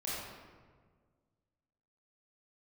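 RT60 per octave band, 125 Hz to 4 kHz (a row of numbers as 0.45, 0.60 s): 2.2, 2.0, 1.8, 1.5, 1.2, 0.90 s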